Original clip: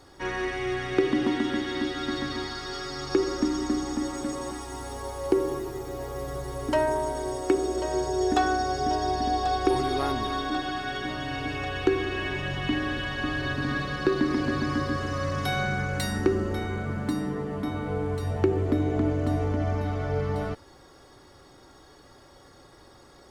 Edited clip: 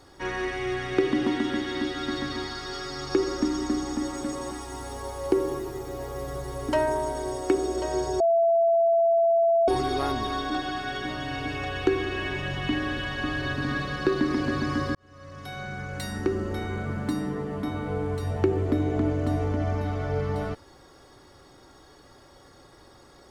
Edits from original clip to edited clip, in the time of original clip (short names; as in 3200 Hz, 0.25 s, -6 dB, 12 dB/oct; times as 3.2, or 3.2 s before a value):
8.2–9.68 bleep 671 Hz -17.5 dBFS
14.95–16.81 fade in